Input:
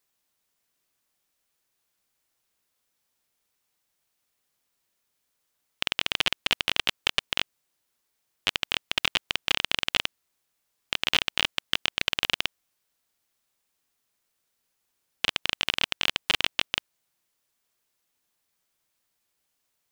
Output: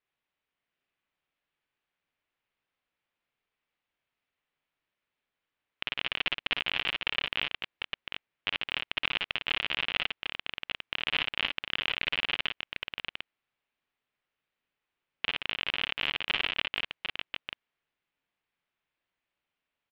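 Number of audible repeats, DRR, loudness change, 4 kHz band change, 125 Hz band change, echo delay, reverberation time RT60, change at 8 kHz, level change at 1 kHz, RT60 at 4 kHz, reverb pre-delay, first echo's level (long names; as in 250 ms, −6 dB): 2, no reverb audible, −5.0 dB, −5.0 dB, −4.5 dB, 56 ms, no reverb audible, below −25 dB, −3.5 dB, no reverb audible, no reverb audible, −5.0 dB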